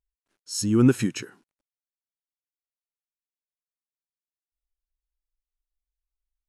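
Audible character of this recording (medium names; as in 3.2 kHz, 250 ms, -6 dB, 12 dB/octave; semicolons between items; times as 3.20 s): noise floor -97 dBFS; spectral tilt -5.5 dB/octave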